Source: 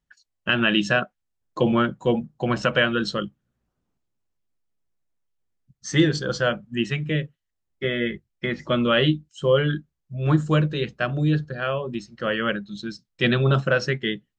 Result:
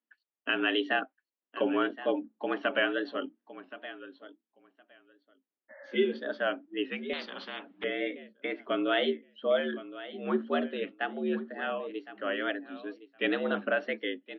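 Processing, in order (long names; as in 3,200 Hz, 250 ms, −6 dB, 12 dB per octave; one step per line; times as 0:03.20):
0:05.72–0:06.10: healed spectral selection 450–2,000 Hz after
single-sideband voice off tune +77 Hz 170–3,300 Hz
on a send: repeating echo 1,067 ms, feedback 15%, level −15 dB
on the sum: tape wow and flutter 79 cents
0:07.13–0:07.84: every bin compressed towards the loudest bin 4 to 1
level −7.5 dB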